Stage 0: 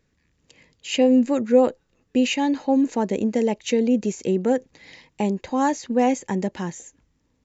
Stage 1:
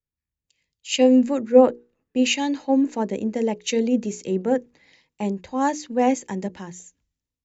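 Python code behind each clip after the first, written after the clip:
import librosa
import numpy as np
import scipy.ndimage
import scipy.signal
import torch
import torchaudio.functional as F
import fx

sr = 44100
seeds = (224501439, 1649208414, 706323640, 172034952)

y = fx.hum_notches(x, sr, base_hz=60, count=8)
y = fx.band_widen(y, sr, depth_pct=70)
y = y * librosa.db_to_amplitude(-1.0)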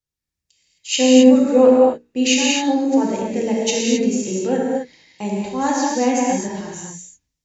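y = fx.peak_eq(x, sr, hz=5500.0, db=7.0, octaves=1.6)
y = fx.rev_gated(y, sr, seeds[0], gate_ms=290, shape='flat', drr_db=-4.0)
y = y * librosa.db_to_amplitude(-1.5)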